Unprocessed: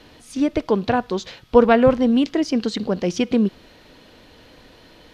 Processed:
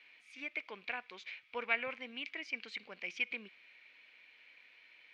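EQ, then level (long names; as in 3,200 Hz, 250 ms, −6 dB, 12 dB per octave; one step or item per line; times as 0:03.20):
resonant band-pass 2,300 Hz, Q 10
+3.5 dB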